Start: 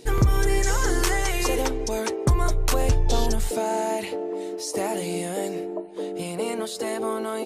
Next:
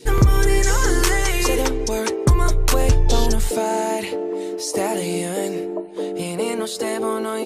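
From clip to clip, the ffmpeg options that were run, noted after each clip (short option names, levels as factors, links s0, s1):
-af "adynamicequalizer=threshold=0.00794:dfrequency=720:dqfactor=3:tfrequency=720:tqfactor=3:attack=5:release=100:ratio=0.375:range=2.5:mode=cutabove:tftype=bell,volume=1.78"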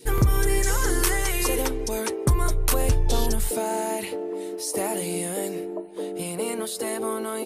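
-af "aexciter=amount=3.7:drive=2.2:freq=9000,volume=0.531"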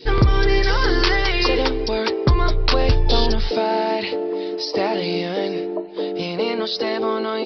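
-af "aresample=11025,aresample=44100,bass=f=250:g=-3,treble=f=4000:g=11,volume=2.24"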